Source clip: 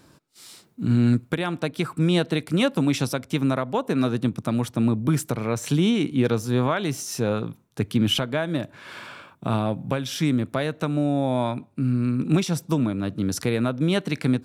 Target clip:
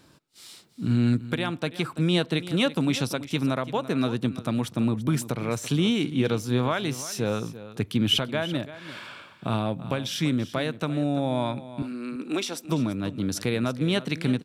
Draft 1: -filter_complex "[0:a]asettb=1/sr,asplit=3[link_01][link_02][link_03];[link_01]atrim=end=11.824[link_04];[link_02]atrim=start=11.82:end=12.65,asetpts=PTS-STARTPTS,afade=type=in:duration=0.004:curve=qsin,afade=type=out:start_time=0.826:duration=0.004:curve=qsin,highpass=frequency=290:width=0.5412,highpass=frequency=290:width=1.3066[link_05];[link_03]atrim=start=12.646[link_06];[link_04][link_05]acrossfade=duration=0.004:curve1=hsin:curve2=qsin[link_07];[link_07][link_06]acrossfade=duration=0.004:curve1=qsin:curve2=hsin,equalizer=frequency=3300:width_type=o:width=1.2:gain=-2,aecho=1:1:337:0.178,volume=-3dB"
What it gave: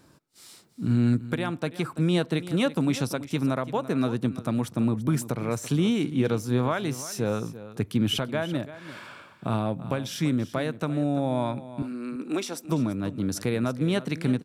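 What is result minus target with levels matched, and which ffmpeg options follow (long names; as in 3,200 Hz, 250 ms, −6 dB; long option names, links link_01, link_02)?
4,000 Hz band −5.5 dB
-filter_complex "[0:a]asettb=1/sr,asplit=3[link_01][link_02][link_03];[link_01]atrim=end=11.824[link_04];[link_02]atrim=start=11.82:end=12.65,asetpts=PTS-STARTPTS,afade=type=in:duration=0.004:curve=qsin,afade=type=out:start_time=0.826:duration=0.004:curve=qsin,highpass=frequency=290:width=0.5412,highpass=frequency=290:width=1.3066[link_05];[link_03]atrim=start=12.646[link_06];[link_04][link_05]acrossfade=duration=0.004:curve1=hsin:curve2=qsin[link_07];[link_07][link_06]acrossfade=duration=0.004:curve1=qsin:curve2=hsin,equalizer=frequency=3300:width_type=o:width=1.2:gain=4.5,aecho=1:1:337:0.178,volume=-3dB"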